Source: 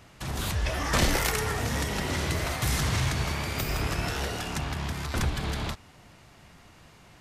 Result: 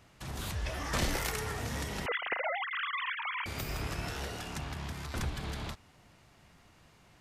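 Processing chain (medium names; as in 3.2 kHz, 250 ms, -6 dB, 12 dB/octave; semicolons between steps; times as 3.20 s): 2.06–3.46 s: formants replaced by sine waves; trim -7.5 dB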